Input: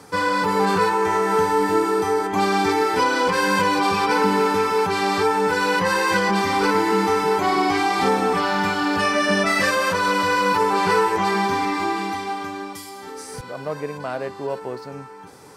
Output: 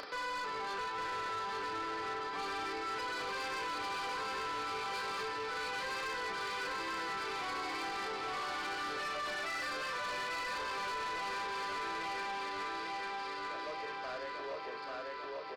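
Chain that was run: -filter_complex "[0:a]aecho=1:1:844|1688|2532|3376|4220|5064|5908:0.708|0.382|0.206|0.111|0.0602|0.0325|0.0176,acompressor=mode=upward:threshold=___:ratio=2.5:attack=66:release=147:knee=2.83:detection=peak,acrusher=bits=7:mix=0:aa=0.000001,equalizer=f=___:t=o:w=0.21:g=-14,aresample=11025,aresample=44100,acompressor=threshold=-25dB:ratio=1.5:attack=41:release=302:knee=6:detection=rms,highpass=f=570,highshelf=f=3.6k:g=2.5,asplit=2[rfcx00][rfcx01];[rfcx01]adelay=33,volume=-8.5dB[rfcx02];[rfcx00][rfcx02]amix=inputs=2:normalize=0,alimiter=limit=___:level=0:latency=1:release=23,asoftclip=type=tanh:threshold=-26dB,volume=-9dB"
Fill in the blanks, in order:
-27dB, 870, -15dB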